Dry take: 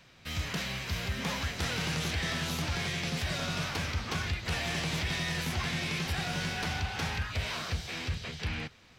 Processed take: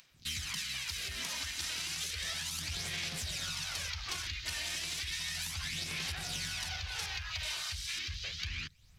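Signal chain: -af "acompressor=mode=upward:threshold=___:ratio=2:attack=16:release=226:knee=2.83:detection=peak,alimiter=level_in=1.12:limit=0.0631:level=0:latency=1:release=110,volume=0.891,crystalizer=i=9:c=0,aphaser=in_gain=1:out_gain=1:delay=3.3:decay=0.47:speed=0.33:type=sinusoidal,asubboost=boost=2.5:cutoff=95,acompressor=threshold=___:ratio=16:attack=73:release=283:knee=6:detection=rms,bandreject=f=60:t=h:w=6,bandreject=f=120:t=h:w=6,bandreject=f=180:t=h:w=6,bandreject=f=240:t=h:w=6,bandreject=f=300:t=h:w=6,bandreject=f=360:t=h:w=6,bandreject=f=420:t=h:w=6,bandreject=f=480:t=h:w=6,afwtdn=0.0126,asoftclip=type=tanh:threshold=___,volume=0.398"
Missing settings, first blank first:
0.00355, 0.0447, 0.178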